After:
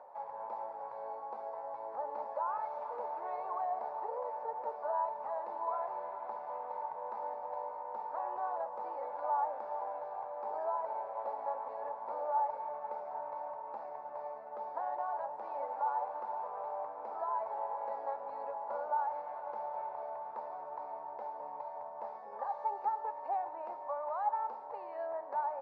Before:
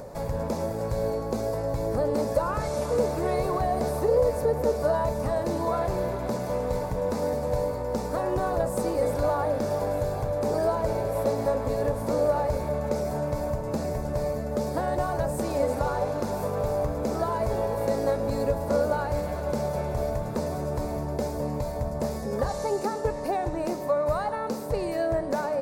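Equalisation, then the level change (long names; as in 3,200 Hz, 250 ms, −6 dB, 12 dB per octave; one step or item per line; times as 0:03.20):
four-pole ladder band-pass 940 Hz, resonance 70%
high-frequency loss of the air 140 metres
0.0 dB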